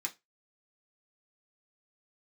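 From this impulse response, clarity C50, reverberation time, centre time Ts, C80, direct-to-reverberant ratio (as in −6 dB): 20.0 dB, 0.20 s, 7 ms, 29.0 dB, −1.5 dB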